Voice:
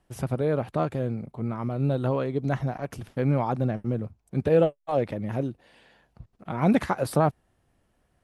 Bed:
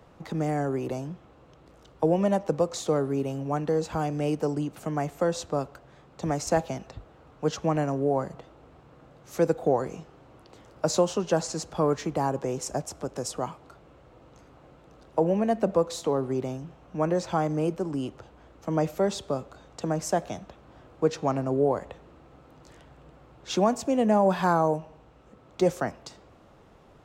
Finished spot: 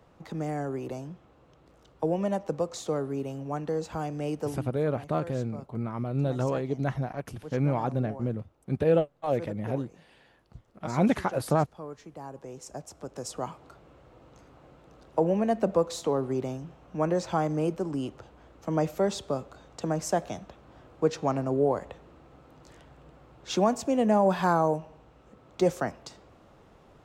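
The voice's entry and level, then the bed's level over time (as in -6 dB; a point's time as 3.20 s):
4.35 s, -2.5 dB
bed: 4.48 s -4.5 dB
4.70 s -16.5 dB
12.10 s -16.5 dB
13.59 s -1 dB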